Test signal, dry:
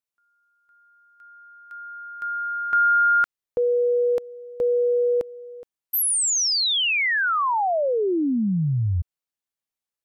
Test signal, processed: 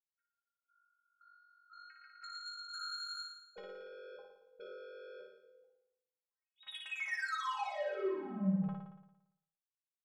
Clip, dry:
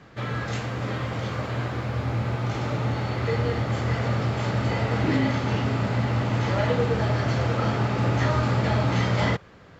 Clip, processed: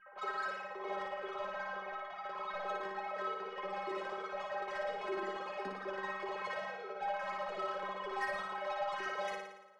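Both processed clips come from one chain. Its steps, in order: formants replaced by sine waves; reverb removal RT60 1.9 s; low-pass 1.6 kHz 12 dB/octave; bass shelf 210 Hz +8 dB; compression, threshold -19 dBFS; peak limiter -22 dBFS; saturation -32.5 dBFS; inharmonic resonator 190 Hz, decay 0.27 s, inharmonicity 0.008; flutter echo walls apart 9.8 m, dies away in 0.87 s; trim +6.5 dB

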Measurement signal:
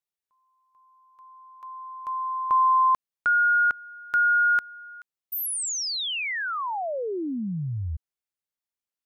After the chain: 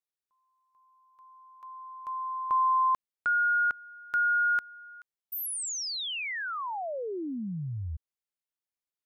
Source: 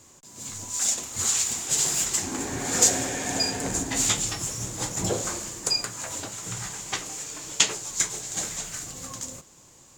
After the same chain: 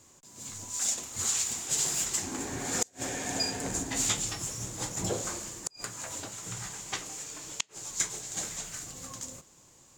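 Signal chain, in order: inverted gate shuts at -9 dBFS, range -34 dB; trim -5 dB

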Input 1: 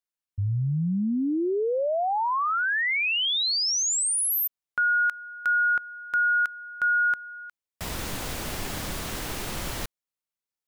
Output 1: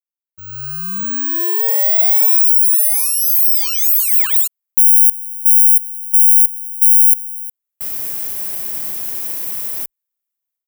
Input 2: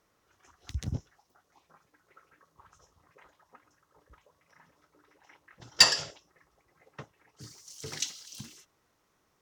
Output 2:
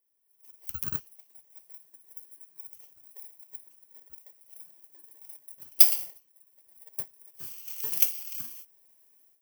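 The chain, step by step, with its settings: bit-reversed sample order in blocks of 32 samples; peaking EQ 4.9 kHz -10 dB 2.2 oct; level rider gain up to 16 dB; tilt EQ +3.5 dB/octave; trim -14.5 dB

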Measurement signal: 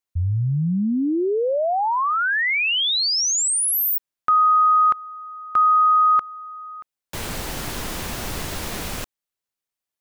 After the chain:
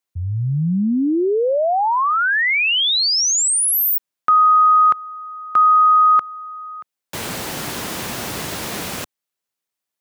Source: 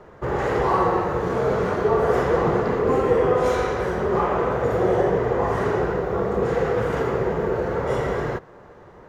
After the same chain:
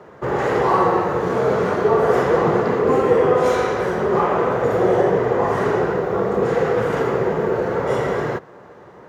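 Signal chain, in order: high-pass 120 Hz 12 dB/octave; trim +3.5 dB

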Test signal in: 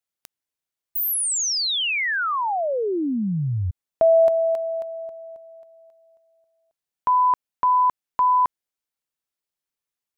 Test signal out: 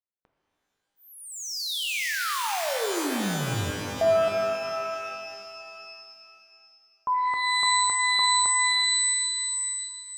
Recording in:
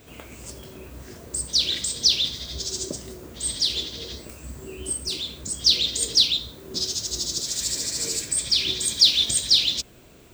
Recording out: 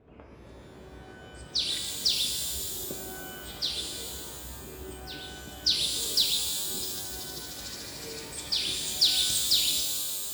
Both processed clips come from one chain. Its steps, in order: level-controlled noise filter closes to 1.1 kHz, open at -16.5 dBFS; pitch-shifted reverb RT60 2.5 s, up +12 st, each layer -2 dB, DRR 3 dB; trim -7.5 dB

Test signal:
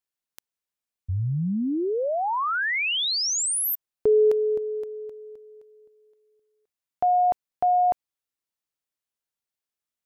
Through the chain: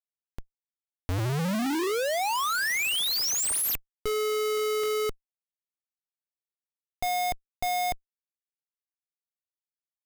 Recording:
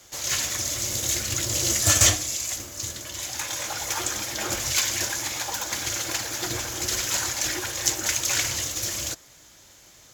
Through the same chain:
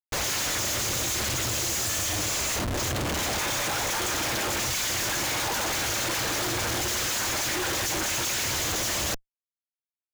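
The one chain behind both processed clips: hum notches 50/100/150/200/250/300/350 Hz; Chebyshev shaper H 5 -33 dB, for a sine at -4.5 dBFS; Schmitt trigger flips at -33 dBFS; trim -1 dB

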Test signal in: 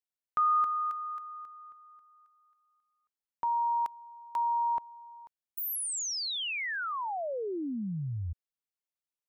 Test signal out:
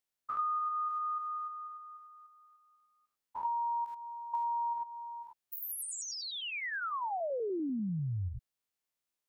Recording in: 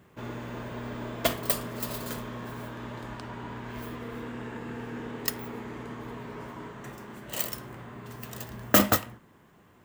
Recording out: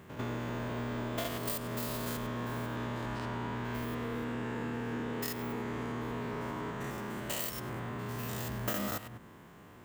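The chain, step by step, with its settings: spectrogram pixelated in time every 100 ms; compression 6:1, threshold -39 dBFS; trim +6 dB

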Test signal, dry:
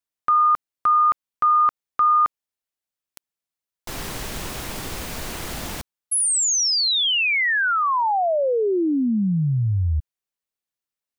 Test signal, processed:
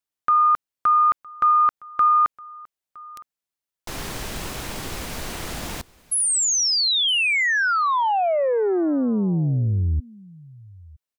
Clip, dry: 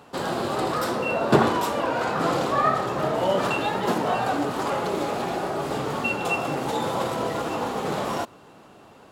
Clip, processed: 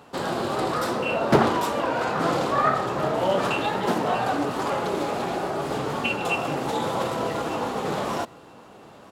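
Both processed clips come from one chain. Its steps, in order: delay 963 ms -23.5 dB; loudspeaker Doppler distortion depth 0.49 ms

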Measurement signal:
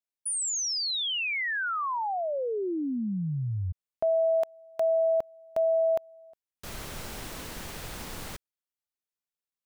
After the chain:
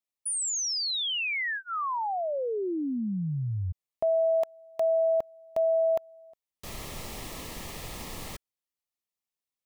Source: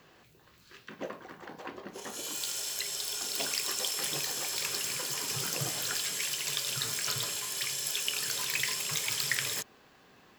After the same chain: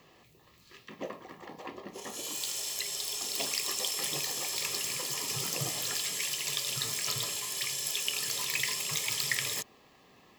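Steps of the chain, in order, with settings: Butterworth band-stop 1.5 kHz, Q 4.9

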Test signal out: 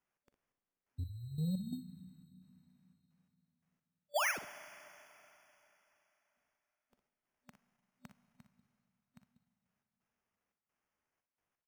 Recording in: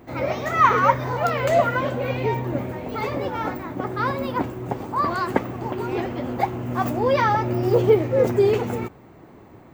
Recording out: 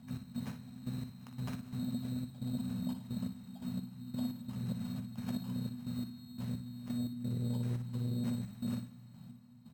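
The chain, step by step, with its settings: frequency weighting A; FFT band-reject 250–8600 Hz; high-pass 63 Hz 6 dB/octave; bass shelf 330 Hz +7 dB; compression 10:1, threshold -39 dBFS; trance gate "x.x..x..x.xxx.xx" 87 bpm -12 dB; sample-and-hold 11×; on a send: early reflections 44 ms -16 dB, 59 ms -10 dB; on the sum: Schroeder reverb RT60 3.4 s, combs from 33 ms, DRR 13.5 dB; transformer saturation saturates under 170 Hz; trim +7 dB

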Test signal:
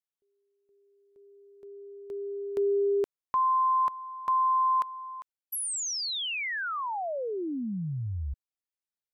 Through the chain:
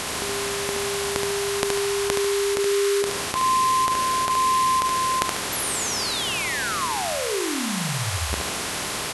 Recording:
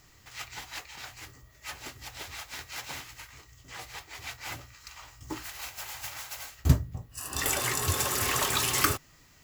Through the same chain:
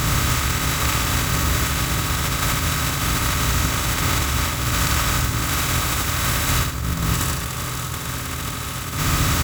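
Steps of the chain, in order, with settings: spectral levelling over time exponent 0.2; compressor with a negative ratio -22 dBFS, ratio -0.5; feedback delay 72 ms, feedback 41%, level -4.5 dB

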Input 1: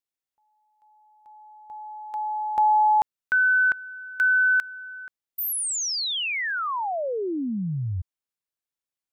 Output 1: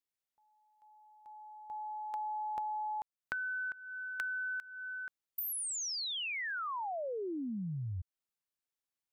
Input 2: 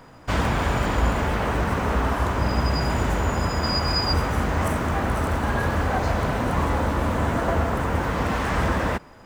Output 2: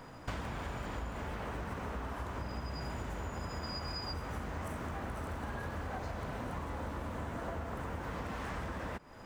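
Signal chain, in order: compression 16:1, threshold -33 dBFS; trim -3 dB

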